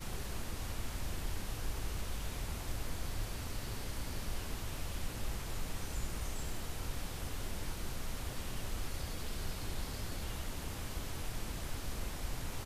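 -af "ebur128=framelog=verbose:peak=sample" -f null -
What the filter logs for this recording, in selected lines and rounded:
Integrated loudness:
  I:         -42.3 LUFS
  Threshold: -52.3 LUFS
Loudness range:
  LRA:         0.5 LU
  Threshold: -62.3 LUFS
  LRA low:   -42.5 LUFS
  LRA high:  -42.0 LUFS
Sample peak:
  Peak:      -24.8 dBFS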